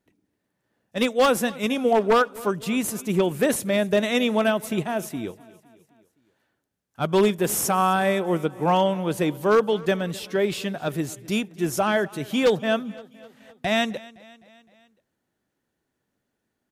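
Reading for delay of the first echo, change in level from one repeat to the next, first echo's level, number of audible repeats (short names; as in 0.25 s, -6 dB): 0.257 s, -5.0 dB, -21.5 dB, 3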